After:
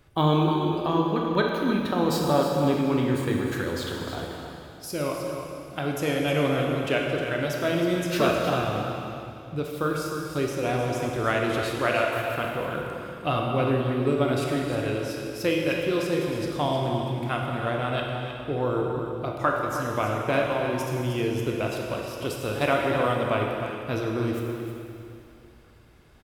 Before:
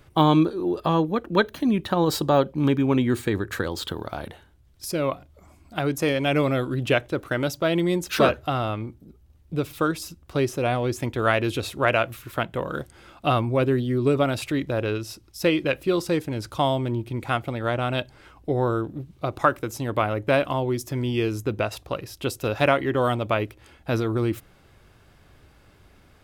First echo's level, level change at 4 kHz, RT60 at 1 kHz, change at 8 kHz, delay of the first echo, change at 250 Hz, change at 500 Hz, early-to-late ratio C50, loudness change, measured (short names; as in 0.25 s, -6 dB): -9.0 dB, -1.5 dB, 2.7 s, -1.5 dB, 0.311 s, -2.0 dB, -1.0 dB, 0.0 dB, -2.0 dB